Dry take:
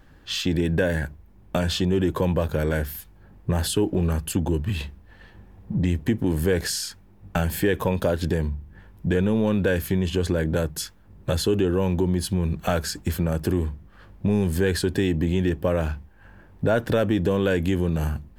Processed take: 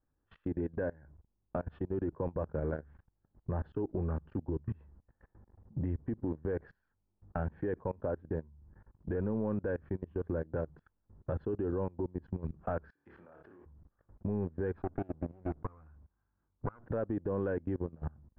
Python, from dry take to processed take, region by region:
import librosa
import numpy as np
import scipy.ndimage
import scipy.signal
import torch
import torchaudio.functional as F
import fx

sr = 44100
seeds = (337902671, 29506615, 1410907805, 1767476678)

y = fx.chain(x, sr, fx.highpass(hz=1500.0, slope=6),
    fx.high_shelf(hz=3900.0, db=8.5),
    fx.room_flutter(wall_m=4.8, rt60_s=0.35), at=(12.9, 13.66))
y = fx.chain(y, sr, fx.lower_of_two(delay_ms=0.79),
    fx.doppler_dist(depth_ms=0.11), at=(14.72, 16.86))
y = scipy.signal.sosfilt(scipy.signal.butter(4, 1400.0, 'lowpass', fs=sr, output='sos'), y)
y = fx.peak_eq(y, sr, hz=180.0, db=-6.5, octaves=0.22)
y = fx.level_steps(y, sr, step_db=24)
y = y * 10.0 ** (-8.5 / 20.0)